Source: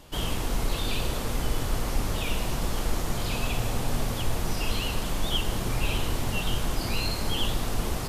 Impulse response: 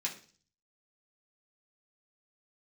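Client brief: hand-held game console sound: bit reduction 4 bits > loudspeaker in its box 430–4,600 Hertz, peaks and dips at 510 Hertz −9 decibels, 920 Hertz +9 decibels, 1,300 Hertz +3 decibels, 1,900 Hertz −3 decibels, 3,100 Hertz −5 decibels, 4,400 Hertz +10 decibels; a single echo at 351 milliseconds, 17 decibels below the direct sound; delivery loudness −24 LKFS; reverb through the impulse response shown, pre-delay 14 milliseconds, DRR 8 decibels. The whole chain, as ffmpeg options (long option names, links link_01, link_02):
-filter_complex "[0:a]aecho=1:1:351:0.141,asplit=2[link_01][link_02];[1:a]atrim=start_sample=2205,adelay=14[link_03];[link_02][link_03]afir=irnorm=-1:irlink=0,volume=-10.5dB[link_04];[link_01][link_04]amix=inputs=2:normalize=0,acrusher=bits=3:mix=0:aa=0.000001,highpass=430,equalizer=frequency=510:width_type=q:width=4:gain=-9,equalizer=frequency=920:width_type=q:width=4:gain=9,equalizer=frequency=1300:width_type=q:width=4:gain=3,equalizer=frequency=1900:width_type=q:width=4:gain=-3,equalizer=frequency=3100:width_type=q:width=4:gain=-5,equalizer=frequency=4400:width_type=q:width=4:gain=10,lowpass=frequency=4600:width=0.5412,lowpass=frequency=4600:width=1.3066,volume=3dB"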